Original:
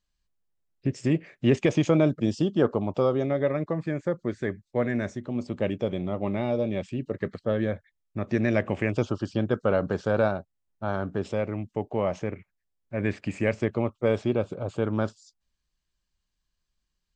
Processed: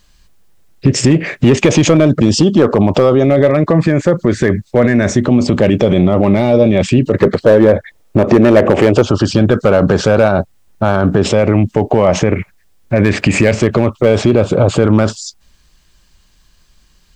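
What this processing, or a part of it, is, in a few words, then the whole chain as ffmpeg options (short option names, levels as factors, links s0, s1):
loud club master: -filter_complex "[0:a]asettb=1/sr,asplit=3[s0][s1][s2];[s0]atrim=end=7.184[s3];[s1]atrim=start=7.18:end=9.02,asetpts=PTS-STARTPTS,afade=t=in:d=0.004:c=qsin,afade=t=out:st=1.836:d=0.004:c=qsin,equalizer=f=470:w=0.65:g=11.5[s4];[s2]atrim=start=9.016[s5];[s3][s4]acrossfade=d=0.004:c1=hsin:c2=qsin[s6];[s6][s5]acrossfade=d=0.004:c1=qsin:c2=hsin,acompressor=threshold=0.0562:ratio=2,asoftclip=type=hard:threshold=0.112,alimiter=level_in=29.9:limit=0.891:release=50:level=0:latency=1,volume=0.891"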